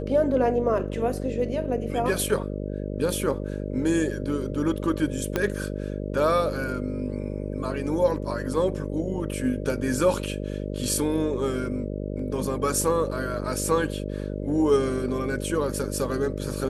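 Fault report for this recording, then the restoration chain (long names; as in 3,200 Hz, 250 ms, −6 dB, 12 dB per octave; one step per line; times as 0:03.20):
mains buzz 50 Hz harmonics 12 −31 dBFS
0:05.36: click −10 dBFS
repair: click removal
hum removal 50 Hz, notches 12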